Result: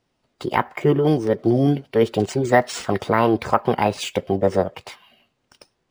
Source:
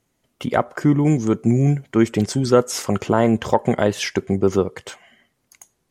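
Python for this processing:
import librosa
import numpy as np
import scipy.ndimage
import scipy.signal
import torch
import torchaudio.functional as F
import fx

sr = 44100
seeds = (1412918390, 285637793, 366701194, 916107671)

y = fx.notch(x, sr, hz=4200.0, q=5.0)
y = fx.formant_shift(y, sr, semitones=6)
y = np.interp(np.arange(len(y)), np.arange(len(y))[::3], y[::3])
y = y * librosa.db_to_amplitude(-1.0)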